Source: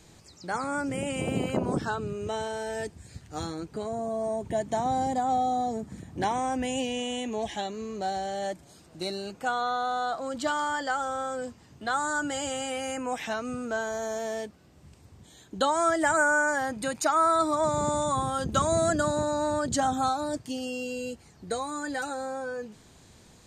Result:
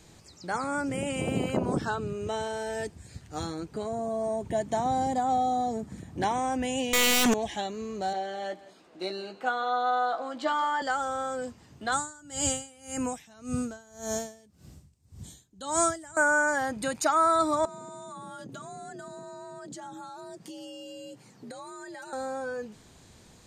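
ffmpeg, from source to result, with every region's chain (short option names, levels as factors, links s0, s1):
-filter_complex "[0:a]asettb=1/sr,asplit=3[s0][s1][s2];[s0]atrim=end=6.934[s3];[s1]atrim=start=6.93:end=7.34,asetpts=PTS-STARTPTS,afade=t=in:d=0.004:c=qsin,afade=t=out:st=0.406:d=0.004:c=qsin,highpass=190,highshelf=f=6700:g=10,aeval=exprs='0.112*sin(PI/2*5.01*val(0)/0.112)':c=same[s4];[s2]atrim=start=7.336[s5];[s3][s4]acrossfade=d=0.004:c1=hsin:c2=qsin[s6];[s6][s5]acrossfade=d=0.004:c1=qsin:c2=hsin,asettb=1/sr,asplit=3[s7][s8][s9];[s7]atrim=end=8.134[s10];[s8]atrim=start=8.13:end=10.82,asetpts=PTS-STARTPTS,afade=t=in:d=0.004:c=qsin,afade=t=out:st=2.686:d=0.004:c=qsin,acrossover=split=240 4200:gain=0.0891 1 0.2[s11][s12][s13];[s11][s12][s13]amix=inputs=3:normalize=0,asplit=2[s14][s15];[s15]adelay=16,volume=0.473[s16];[s14][s16]amix=inputs=2:normalize=0,atrim=end_sample=118629,aecho=1:1:171:0.126,atrim=end_sample=118629[s17];[s9]atrim=start=10.816[s18];[s10][s17]acrossfade=d=0.004:c1=hsin:c2=qsin[s19];[s19][s18]acrossfade=d=0.004:c1=qsin:c2=hsin,asettb=1/sr,asplit=3[s20][s21][s22];[s20]atrim=end=11.924[s23];[s21]atrim=start=11.92:end=16.17,asetpts=PTS-STARTPTS,afade=t=in:d=0.004:c=qsin,afade=t=out:st=4.246:d=0.004:c=qsin,bass=f=250:g=12,treble=f=4000:g=12,aeval=exprs='val(0)*pow(10,-26*(0.5-0.5*cos(2*PI*1.8*n/s))/20)':c=same[s24];[s22]atrim=start=16.166[s25];[s23][s24]acrossfade=d=0.004:c1=hsin:c2=qsin[s26];[s26][s25]acrossfade=d=0.004:c1=qsin:c2=hsin,asettb=1/sr,asplit=3[s27][s28][s29];[s27]atrim=end=17.654[s30];[s28]atrim=start=17.65:end=22.13,asetpts=PTS-STARTPTS,afade=t=in:d=0.004:c=qsin,afade=t=out:st=4.476:d=0.004:c=qsin,afreqshift=57,acompressor=threshold=0.0112:ratio=10:attack=3.2:release=140:knee=1:detection=peak[s31];[s29]atrim=start=22.126[s32];[s30][s31]acrossfade=d=0.004:c1=hsin:c2=qsin[s33];[s33][s32]acrossfade=d=0.004:c1=qsin:c2=hsin"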